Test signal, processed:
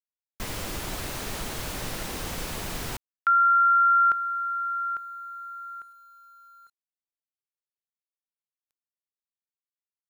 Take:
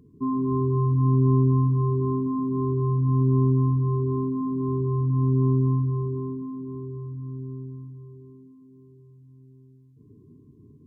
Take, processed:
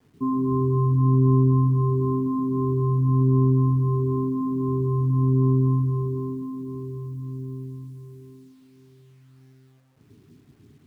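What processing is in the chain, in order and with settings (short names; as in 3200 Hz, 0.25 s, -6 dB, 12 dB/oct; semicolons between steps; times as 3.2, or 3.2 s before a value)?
expander -47 dBFS; bit-crush 11-bit; gain +1.5 dB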